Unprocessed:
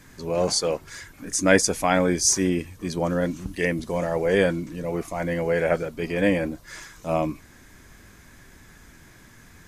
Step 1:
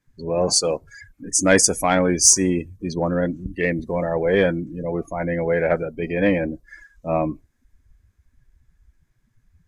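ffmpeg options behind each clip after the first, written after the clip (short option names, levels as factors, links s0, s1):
-filter_complex "[0:a]afftdn=nr=28:nf=-34,asplit=2[s0][s1];[s1]acontrast=64,volume=0.75[s2];[s0][s2]amix=inputs=2:normalize=0,adynamicequalizer=threshold=0.0251:dfrequency=5900:dqfactor=0.7:tfrequency=5900:tqfactor=0.7:attack=5:release=100:ratio=0.375:range=4:mode=boostabove:tftype=highshelf,volume=0.531"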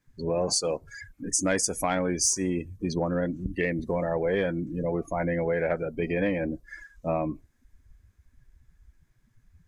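-af "acompressor=threshold=0.0631:ratio=4"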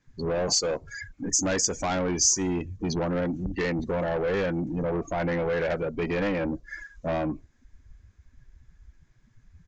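-filter_complex "[0:a]acrossover=split=5600[s0][s1];[s0]asoftclip=type=tanh:threshold=0.0447[s2];[s2][s1]amix=inputs=2:normalize=0,aresample=16000,aresample=44100,volume=1.68"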